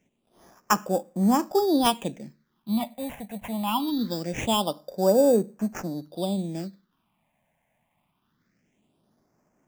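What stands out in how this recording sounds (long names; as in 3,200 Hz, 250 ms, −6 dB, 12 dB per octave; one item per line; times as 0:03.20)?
aliases and images of a low sample rate 4,200 Hz, jitter 0%
phaser sweep stages 6, 0.23 Hz, lowest notch 340–3,900 Hz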